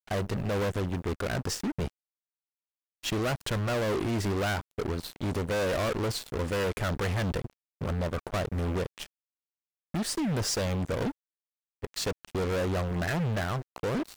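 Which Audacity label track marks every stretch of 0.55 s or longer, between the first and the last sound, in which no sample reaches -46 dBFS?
1.900000	3.030000	silence
9.060000	9.940000	silence
11.120000	11.820000	silence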